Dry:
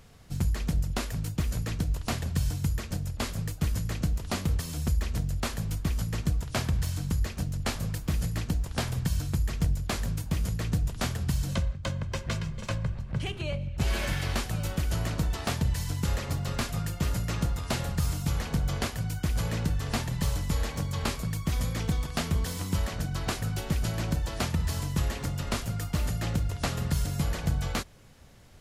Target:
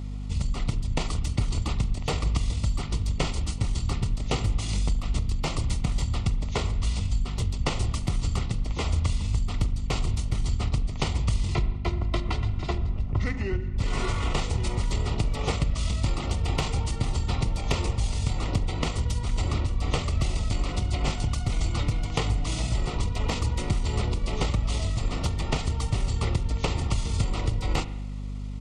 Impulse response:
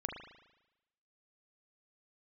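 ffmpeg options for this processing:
-filter_complex "[0:a]acompressor=threshold=-28dB:ratio=10,asuperstop=centerf=2500:order=4:qfactor=3.8,asetrate=28595,aresample=44100,atempo=1.54221,asplit=2[a][b];[1:a]atrim=start_sample=2205[c];[b][c]afir=irnorm=-1:irlink=0,volume=-7.5dB[d];[a][d]amix=inputs=2:normalize=0,aeval=exprs='val(0)+0.0158*(sin(2*PI*50*n/s)+sin(2*PI*2*50*n/s)/2+sin(2*PI*3*50*n/s)/3+sin(2*PI*4*50*n/s)/4+sin(2*PI*5*50*n/s)/5)':c=same,volume=4dB"

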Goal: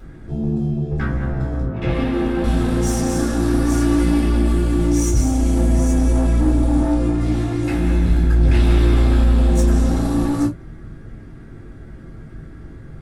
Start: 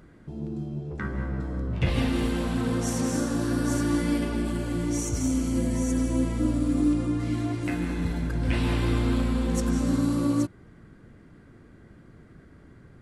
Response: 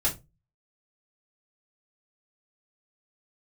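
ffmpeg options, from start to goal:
-filter_complex "[0:a]asettb=1/sr,asplit=3[a][b][c];[a]atrim=end=1.654[d];[b]atrim=start=1.65:end=2.44,asetpts=PTS-STARTPTS,afade=t=in:d=0.004:c=qsin,afade=t=out:st=0.786:d=0.004:c=qsin,acrossover=split=170 2500:gain=0.224 1 0.2[e][f][g];[e][f][g]amix=inputs=3:normalize=0[h];[c]atrim=start=2.436[i];[d][h]acrossfade=d=0.004:c1=hsin:c2=qsin[j];[j][i]acrossfade=d=0.004:c1=qsin:c2=hsin,asoftclip=type=tanh:threshold=-26dB[k];[1:a]atrim=start_sample=2205,afade=t=out:st=0.14:d=0.01,atrim=end_sample=6615[l];[k][l]afir=irnorm=-1:irlink=0,volume=1dB"

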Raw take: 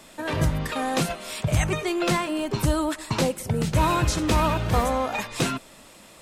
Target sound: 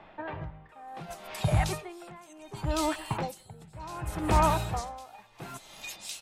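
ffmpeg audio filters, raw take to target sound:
-filter_complex "[0:a]equalizer=f=250:t=o:w=0.33:g=-10,equalizer=f=500:t=o:w=0.33:g=-4,equalizer=f=800:t=o:w=0.33:g=9,acrossover=split=2800[a][b];[b]adelay=690[c];[a][c]amix=inputs=2:normalize=0,aeval=exprs='val(0)*pow(10,-23*(0.5-0.5*cos(2*PI*0.68*n/s))/20)':c=same,volume=-1.5dB"

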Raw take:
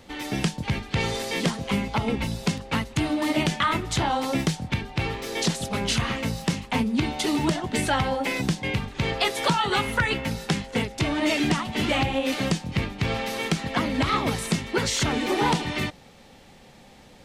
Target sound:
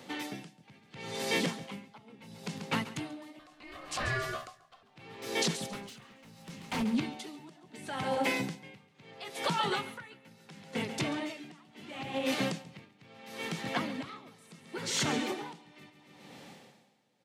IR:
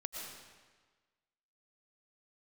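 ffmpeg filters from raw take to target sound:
-filter_complex "[0:a]highpass=f=130:w=0.5412,highpass=f=130:w=1.3066,alimiter=limit=-19dB:level=0:latency=1:release=457,asettb=1/sr,asplit=3[a][b][c];[a]atrim=end=3.394[d];[b]atrim=start=3.39:end=4.83,asetpts=PTS-STARTPTS,afade=t=in:d=0.004:c=qsin,afade=t=out:st=1.436:d=0.004:c=qsin,aeval=exprs='val(0)*sin(2*PI*910*n/s)':c=same[e];[c]atrim=start=4.826[f];[d][e]acrossfade=d=0.004:c1=hsin:c2=qsin[g];[g][f]acrossfade=d=0.004:c1=qsin:c2=hsin,asettb=1/sr,asplit=3[h][i][j];[h]atrim=end=5.544[k];[i]atrim=start=5.54:end=6.83,asetpts=PTS-STARTPTS,afade=t=in:d=0.004:c=qsin,afade=t=out:st=1.286:d=0.004:c=qsin,aeval=exprs='0.0501*(abs(mod(val(0)/0.0501+3,4)-2)-1)':c=same[l];[j]atrim=start=6.826[m];[k][l]acrossfade=d=0.004:c1=hsin:c2=qsin[n];[n][m]acrossfade=d=0.004:c1=qsin:c2=hsin,aecho=1:1:138|276|414|552|690|828:0.224|0.128|0.0727|0.0415|0.0236|0.0135,aeval=exprs='val(0)*pow(10,-24*(0.5-0.5*cos(2*PI*0.73*n/s))/20)':c=same"

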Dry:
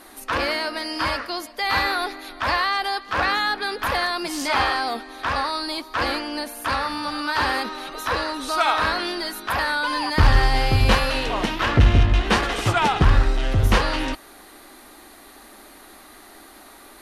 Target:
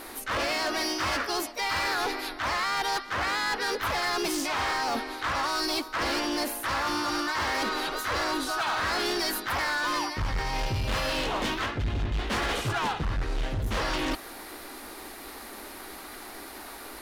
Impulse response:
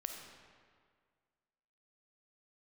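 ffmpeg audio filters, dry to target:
-filter_complex "[0:a]areverse,acompressor=threshold=-26dB:ratio=16,areverse,aeval=exprs='0.126*(cos(1*acos(clip(val(0)/0.126,-1,1)))-cos(1*PI/2))+0.00112*(cos(2*acos(clip(val(0)/0.126,-1,1)))-cos(2*PI/2))+0.000794*(cos(6*acos(clip(val(0)/0.126,-1,1)))-cos(6*PI/2))':c=same,asplit=2[a][b];[b]asetrate=52444,aresample=44100,atempo=0.840896,volume=-3dB[c];[a][c]amix=inputs=2:normalize=0,volume=26.5dB,asoftclip=hard,volume=-26.5dB,volume=2dB"

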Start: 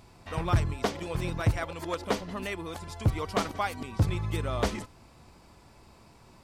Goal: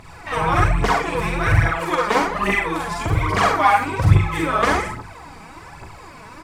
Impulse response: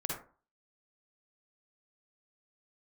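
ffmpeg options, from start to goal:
-filter_complex "[0:a]asplit=2[a][b];[b]adelay=42,volume=-3dB[c];[a][c]amix=inputs=2:normalize=0[d];[1:a]atrim=start_sample=2205,asetrate=43659,aresample=44100[e];[d][e]afir=irnorm=-1:irlink=0,asplit=2[f][g];[g]acompressor=threshold=-32dB:ratio=6,volume=2.5dB[h];[f][h]amix=inputs=2:normalize=0,equalizer=f=1k:t=o:w=1:g=7,equalizer=f=2k:t=o:w=1:g=10,equalizer=f=8k:t=o:w=1:g=4,aphaser=in_gain=1:out_gain=1:delay=4.9:decay=0.61:speed=1.2:type=triangular,volume=-2.5dB"

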